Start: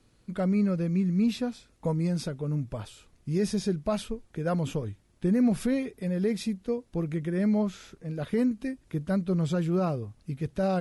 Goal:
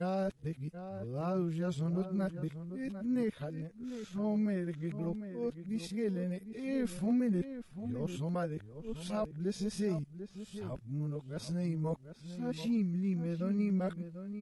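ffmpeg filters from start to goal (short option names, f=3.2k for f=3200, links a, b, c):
-filter_complex "[0:a]areverse,asplit=2[a][b];[b]adelay=559.8,volume=-10dB,highshelf=f=4k:g=-12.6[c];[a][c]amix=inputs=2:normalize=0,atempo=0.75,volume=-7.5dB"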